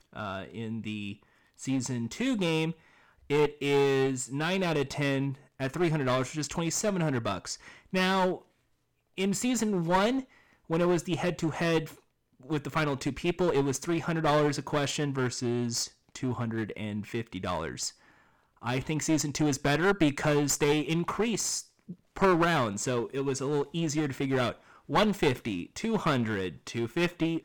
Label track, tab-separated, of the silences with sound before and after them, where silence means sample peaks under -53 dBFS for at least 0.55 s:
8.440000	9.170000	silence